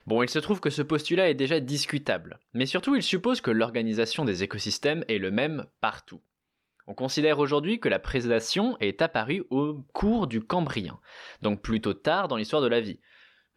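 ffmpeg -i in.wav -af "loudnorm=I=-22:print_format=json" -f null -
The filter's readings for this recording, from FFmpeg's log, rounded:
"input_i" : "-27.1",
"input_tp" : "-9.9",
"input_lra" : "2.9",
"input_thresh" : "-37.7",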